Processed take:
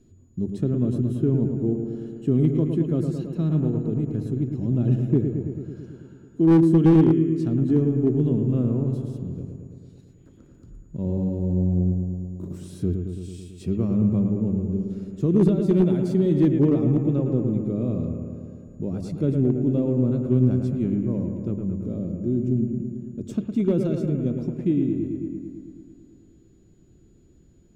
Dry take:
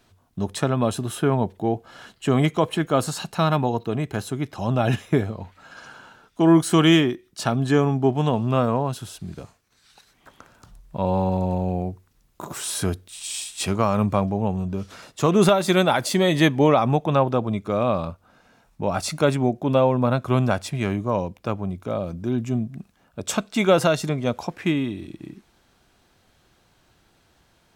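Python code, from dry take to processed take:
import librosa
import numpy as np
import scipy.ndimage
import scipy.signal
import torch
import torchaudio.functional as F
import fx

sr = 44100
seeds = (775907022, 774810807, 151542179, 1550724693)

y = fx.law_mismatch(x, sr, coded='mu')
y = fx.hum_notches(y, sr, base_hz=50, count=2)
y = y + 10.0 ** (-50.0 / 20.0) * np.sin(2.0 * np.pi * 6900.0 * np.arange(len(y)) / sr)
y = fx.curve_eq(y, sr, hz=(360.0, 810.0, 4800.0, 13000.0), db=(0, -27, -22, -25))
y = fx.echo_bbd(y, sr, ms=110, stages=2048, feedback_pct=72, wet_db=-6)
y = fx.slew_limit(y, sr, full_power_hz=74.0)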